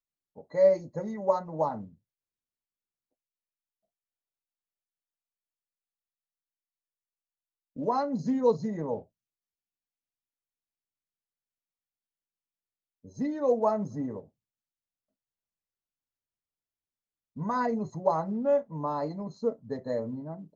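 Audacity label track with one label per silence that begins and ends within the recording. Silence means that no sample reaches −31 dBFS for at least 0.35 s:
1.770000	7.790000	silence
8.980000	13.200000	silence
14.180000	17.400000	silence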